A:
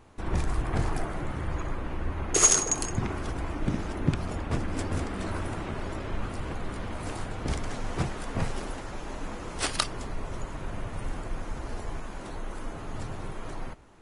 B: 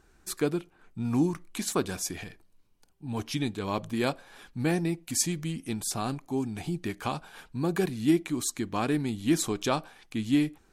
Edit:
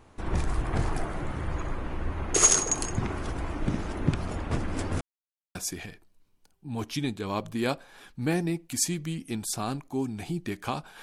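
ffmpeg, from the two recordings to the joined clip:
-filter_complex "[0:a]apad=whole_dur=11.02,atrim=end=11.02,asplit=2[a][b];[a]atrim=end=5.01,asetpts=PTS-STARTPTS,afade=t=out:st=5.006:d=0.004:c=hsin[c];[b]atrim=start=5.01:end=5.55,asetpts=PTS-STARTPTS,volume=0[d];[1:a]atrim=start=1.93:end=7.4,asetpts=PTS-STARTPTS,afade=t=in:d=0.004:c=hsin[e];[c][d][e]concat=n=3:v=0:a=1"

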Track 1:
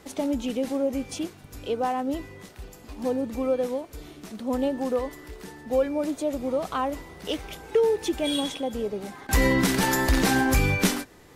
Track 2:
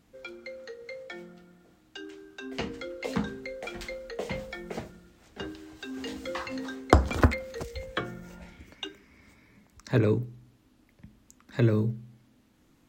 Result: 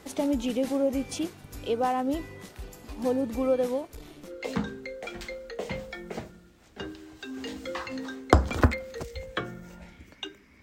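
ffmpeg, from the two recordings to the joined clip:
-filter_complex "[0:a]asettb=1/sr,asplit=3[a][b][c];[a]atrim=end=3.874[d];[b]atrim=start=3.87:end=4.33,asetpts=PTS-STARTPTS,afade=t=in:d=0.004:c=qsin,afade=t=out:st=0.456:d=0.004:c=qsin,aeval=exprs='(tanh(63.1*val(0)+0.6)-tanh(0.6))/63.1':c=same[e];[c]atrim=start=4.326[f];[d][e]acrossfade=d=0.004:c1=hsin:c2=qsin[g];[g][f]acrossfade=d=0.004:c1=qsin:c2=hsin,apad=whole_dur=10.62,atrim=end=10.62,atrim=end=4.33,asetpts=PTS-STARTPTS[h];[1:a]atrim=start=2.83:end=9.22,asetpts=PTS-STARTPTS[i];[h][i]acrossfade=d=0.1:c1=tri:c2=tri"

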